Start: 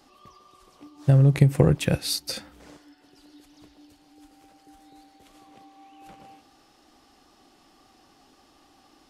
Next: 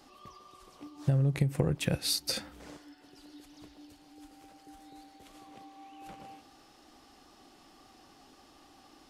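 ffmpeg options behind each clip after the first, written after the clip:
-af "acompressor=threshold=0.0501:ratio=4"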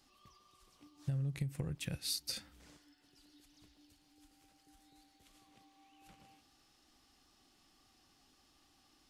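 -af "equalizer=f=560:t=o:w=2.9:g=-10.5,volume=0.473"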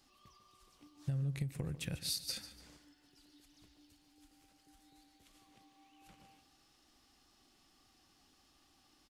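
-af "aecho=1:1:146|292|438:0.211|0.0719|0.0244"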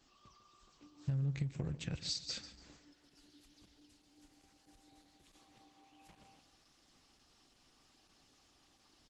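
-af "volume=1.12" -ar 48000 -c:a libopus -b:a 12k

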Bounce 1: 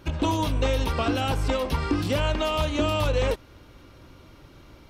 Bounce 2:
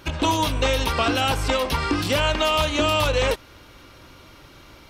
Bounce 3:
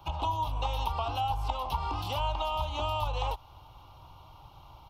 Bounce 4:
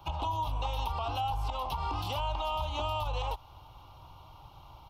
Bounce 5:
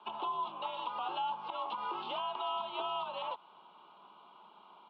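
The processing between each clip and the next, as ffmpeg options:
-af "tiltshelf=f=660:g=-4.5,volume=1.58"
-filter_complex "[0:a]firequalizer=gain_entry='entry(130,0);entry(220,-15);entry(530,-11);entry(820,8);entry(1200,-4);entry(1700,-26);entry(2900,-6);entry(4200,-11);entry(8400,-19);entry(12000,-8)':delay=0.05:min_phase=1,acrossover=split=83|230|640[s0][s1][s2][s3];[s0]acompressor=threshold=0.0316:ratio=4[s4];[s1]acompressor=threshold=0.00501:ratio=4[s5];[s2]acompressor=threshold=0.01:ratio=4[s6];[s3]acompressor=threshold=0.0316:ratio=4[s7];[s4][s5][s6][s7]amix=inputs=4:normalize=0,volume=0.794"
-af "alimiter=limit=0.0631:level=0:latency=1:release=45"
-af "highpass=f=200:t=q:w=0.5412,highpass=f=200:t=q:w=1.307,lowpass=f=3500:t=q:w=0.5176,lowpass=f=3500:t=q:w=0.7071,lowpass=f=3500:t=q:w=1.932,afreqshift=60,volume=0.75"

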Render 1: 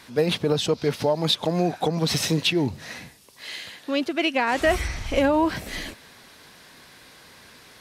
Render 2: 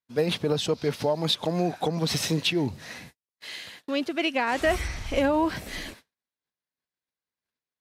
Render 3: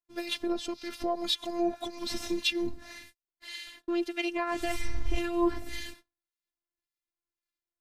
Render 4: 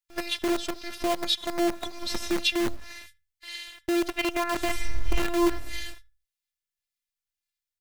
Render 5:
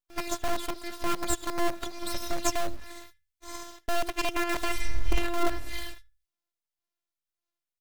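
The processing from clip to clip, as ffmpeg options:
-af "agate=range=0.00562:threshold=0.00708:ratio=16:detection=peak,volume=0.708"
-filter_complex "[0:a]acrossover=split=1500[s0][s1];[s0]aeval=exprs='val(0)*(1-0.7/2+0.7/2*cos(2*PI*1.8*n/s))':c=same[s2];[s1]aeval=exprs='val(0)*(1-0.7/2-0.7/2*cos(2*PI*1.8*n/s))':c=same[s3];[s2][s3]amix=inputs=2:normalize=0,asubboost=boost=4:cutoff=240,afftfilt=real='hypot(re,im)*cos(PI*b)':imag='0':win_size=512:overlap=0.75,volume=1.19"
-filter_complex "[0:a]asplit=2[s0][s1];[s1]adelay=76,lowpass=f=930:p=1,volume=0.224,asplit=2[s2][s3];[s3]adelay=76,lowpass=f=930:p=1,volume=0.36,asplit=2[s4][s5];[s5]adelay=76,lowpass=f=930:p=1,volume=0.36,asplit=2[s6][s7];[s7]adelay=76,lowpass=f=930:p=1,volume=0.36[s8];[s0][s2][s4][s6][s8]amix=inputs=5:normalize=0,acrossover=split=110|1500[s9][s10][s11];[s10]acrusher=bits=6:dc=4:mix=0:aa=0.000001[s12];[s9][s12][s11]amix=inputs=3:normalize=0,volume=1.5"
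-af "aeval=exprs='abs(val(0))':c=same"

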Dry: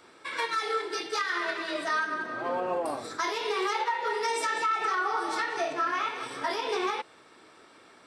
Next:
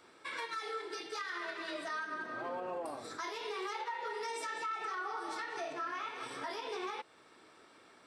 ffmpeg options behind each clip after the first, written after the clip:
-af "alimiter=level_in=1.19:limit=0.0631:level=0:latency=1:release=241,volume=0.841,volume=0.531"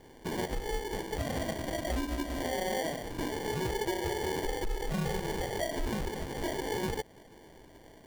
-af "acrusher=samples=34:mix=1:aa=0.000001,volume=2.24"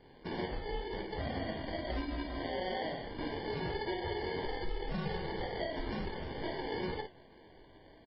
-filter_complex "[0:a]asplit=2[s0][s1];[s1]aecho=0:1:22|52:0.299|0.473[s2];[s0][s2]amix=inputs=2:normalize=0,flanger=delay=9.3:depth=3.8:regen=82:speed=2:shape=triangular" -ar 12000 -c:a libmp3lame -b:a 16k

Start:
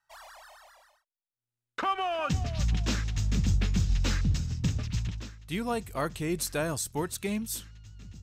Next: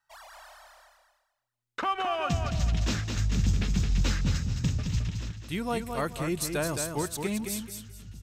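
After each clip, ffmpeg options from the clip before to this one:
-af "aecho=1:1:216|432|648:0.501|0.13|0.0339"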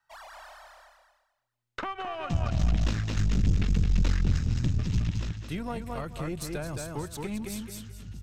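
-filter_complex "[0:a]highshelf=f=5000:g=-7.5,acrossover=split=140[s0][s1];[s1]acompressor=threshold=0.0141:ratio=4[s2];[s0][s2]amix=inputs=2:normalize=0,aeval=exprs='(tanh(17.8*val(0)+0.7)-tanh(0.7))/17.8':c=same,volume=2.24"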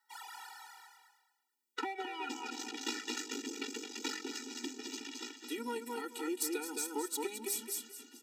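-filter_complex "[0:a]highshelf=f=4900:g=11,acrossover=split=250|1900[s0][s1][s2];[s0]acompressor=threshold=0.0251:ratio=6[s3];[s3][s1][s2]amix=inputs=3:normalize=0,afftfilt=real='re*eq(mod(floor(b*sr/1024/250),2),1)':imag='im*eq(mod(floor(b*sr/1024/250),2),1)':win_size=1024:overlap=0.75"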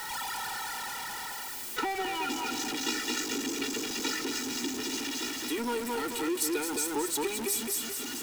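-af "aeval=exprs='val(0)+0.5*0.0178*sgn(val(0))':c=same,volume=1.41"

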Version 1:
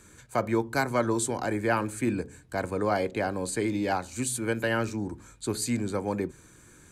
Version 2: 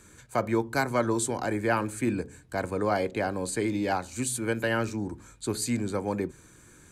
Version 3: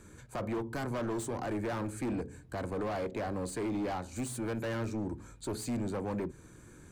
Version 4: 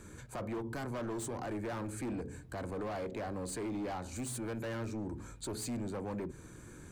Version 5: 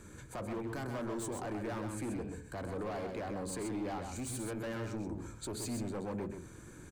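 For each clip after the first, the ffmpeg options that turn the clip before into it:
-af anull
-filter_complex "[0:a]asplit=2[s0][s1];[s1]acompressor=threshold=0.0158:ratio=6,volume=0.708[s2];[s0][s2]amix=inputs=2:normalize=0,asoftclip=type=hard:threshold=0.0398,tiltshelf=f=1200:g=4.5,volume=0.473"
-af "alimiter=level_in=4.22:limit=0.0631:level=0:latency=1:release=38,volume=0.237,volume=1.33"
-af "aecho=1:1:129:0.501,volume=0.891"

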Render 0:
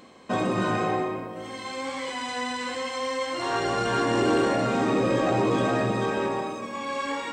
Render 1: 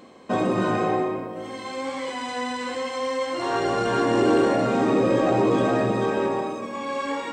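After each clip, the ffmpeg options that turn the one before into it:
-af "equalizer=f=400:w=0.46:g=5.5,volume=0.841"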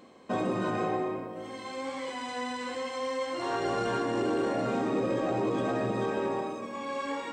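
-af "alimiter=limit=0.188:level=0:latency=1:release=101,volume=0.501"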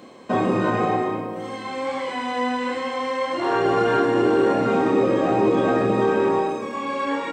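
-filter_complex "[0:a]highpass=67,acrossover=split=3400[s0][s1];[s1]acompressor=threshold=0.00141:ratio=4:attack=1:release=60[s2];[s0][s2]amix=inputs=2:normalize=0,asplit=2[s3][s4];[s4]adelay=28,volume=0.562[s5];[s3][s5]amix=inputs=2:normalize=0,volume=2.66"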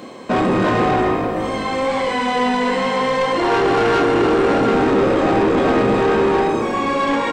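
-filter_complex "[0:a]asoftclip=type=tanh:threshold=0.0794,asplit=6[s0][s1][s2][s3][s4][s5];[s1]adelay=308,afreqshift=-51,volume=0.335[s6];[s2]adelay=616,afreqshift=-102,volume=0.145[s7];[s3]adelay=924,afreqshift=-153,volume=0.0617[s8];[s4]adelay=1232,afreqshift=-204,volume=0.0266[s9];[s5]adelay=1540,afreqshift=-255,volume=0.0115[s10];[s0][s6][s7][s8][s9][s10]amix=inputs=6:normalize=0,volume=2.82"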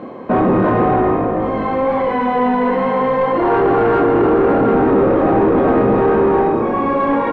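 -filter_complex "[0:a]lowpass=1300,asplit=2[s0][s1];[s1]alimiter=limit=0.141:level=0:latency=1,volume=0.794[s2];[s0][s2]amix=inputs=2:normalize=0"

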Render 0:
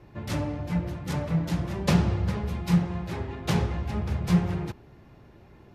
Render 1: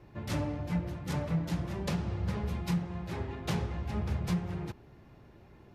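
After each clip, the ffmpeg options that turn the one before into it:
-af "alimiter=limit=0.126:level=0:latency=1:release=472,volume=0.668"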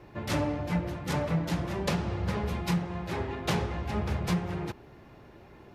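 -af "bass=f=250:g=-6,treble=f=4000:g=-2,volume=2.24"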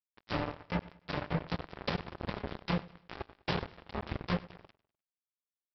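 -af "aresample=11025,acrusher=bits=3:mix=0:aa=0.5,aresample=44100,aecho=1:1:100|200|300:0.1|0.04|0.016,volume=0.596"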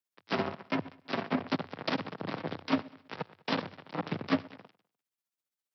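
-af "tremolo=f=15:d=0.67,afreqshift=92,volume=2"

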